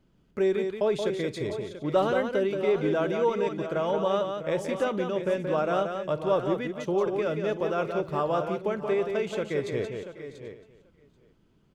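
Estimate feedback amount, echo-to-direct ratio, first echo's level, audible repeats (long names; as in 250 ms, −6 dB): repeats not evenly spaced, −4.5 dB, −17.5 dB, 7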